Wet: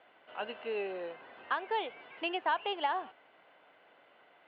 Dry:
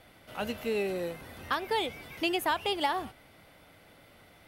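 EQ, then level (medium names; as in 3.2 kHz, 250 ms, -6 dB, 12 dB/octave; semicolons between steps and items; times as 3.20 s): distance through air 450 m; cabinet simulation 410–4700 Hz, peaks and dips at 420 Hz +3 dB, 710 Hz +4 dB, 1 kHz +6 dB, 1.6 kHz +6 dB, 2.9 kHz +9 dB, 4.3 kHz +3 dB; -4.0 dB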